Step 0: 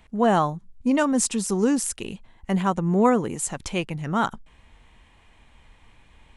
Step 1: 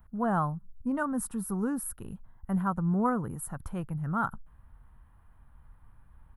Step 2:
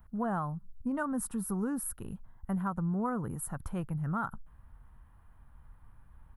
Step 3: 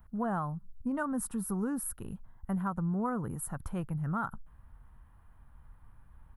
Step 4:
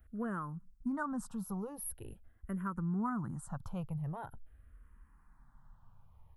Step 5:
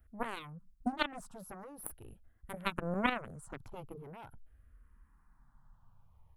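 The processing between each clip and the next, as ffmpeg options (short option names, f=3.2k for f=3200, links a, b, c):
-af "firequalizer=gain_entry='entry(130,0);entry(210,-7);entry(370,-14);entry(1400,-3);entry(2200,-25);entry(3300,-26);entry(6900,-28);entry(12000,6)':delay=0.05:min_phase=1"
-af "acompressor=threshold=-29dB:ratio=6"
-af anull
-filter_complex "[0:a]asplit=2[a][b];[b]afreqshift=-0.44[c];[a][c]amix=inputs=2:normalize=1,volume=-1.5dB"
-af "aeval=exprs='0.0562*(cos(1*acos(clip(val(0)/0.0562,-1,1)))-cos(1*PI/2))+0.0224*(cos(3*acos(clip(val(0)/0.0562,-1,1)))-cos(3*PI/2))':c=same,volume=11.5dB"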